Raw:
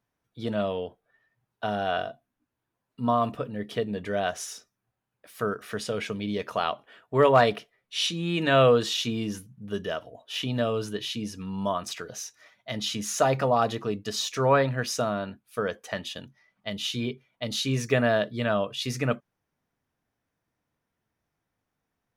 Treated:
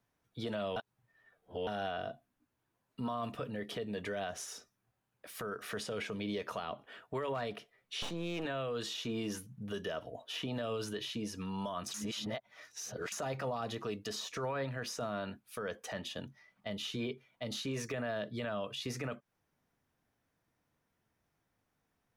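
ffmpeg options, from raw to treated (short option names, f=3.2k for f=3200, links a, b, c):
-filter_complex "[0:a]asettb=1/sr,asplit=3[a][b][c];[a]atrim=end=8.024[d];[b]atrim=start=8.02:end=8.45,asetpts=PTS-STARTPTS,afade=t=in:d=0.004:c=qsin,afade=t=out:st=0.426:d=0.004:c=qsin,aeval=exprs='if(lt(val(0),0),0.251*val(0),val(0))':c=same[e];[c]atrim=start=8.446[f];[d][e]acrossfade=d=0.004:c1=hsin:c2=qsin[g];[g][f]acrossfade=d=0.004:c1=qsin:c2=hsin,asplit=5[h][i][j][k][l];[h]atrim=end=0.762[m];[i]atrim=start=0.758:end=1.672,asetpts=PTS-STARTPTS,areverse[n];[j]atrim=start=1.668:end=11.942[o];[k]atrim=start=11.938:end=13.122,asetpts=PTS-STARTPTS,areverse[p];[l]atrim=start=13.118[q];[m][n]acrossfade=d=0.004:c1=hsin:c2=hsin[r];[r][o]acrossfade=d=0.004:c1=hsin:c2=hsin[s];[s][p]acrossfade=d=0.004:c1=hsin:c2=hsin[t];[t][q]acrossfade=d=0.004:c1=hsin:c2=hsin,acrossover=split=370|1500[u][v][w];[u]acompressor=threshold=-42dB:ratio=4[x];[v]acompressor=threshold=-37dB:ratio=4[y];[w]acompressor=threshold=-44dB:ratio=4[z];[x][y][z]amix=inputs=3:normalize=0,alimiter=level_in=6dB:limit=-24dB:level=0:latency=1:release=14,volume=-6dB,volume=1dB"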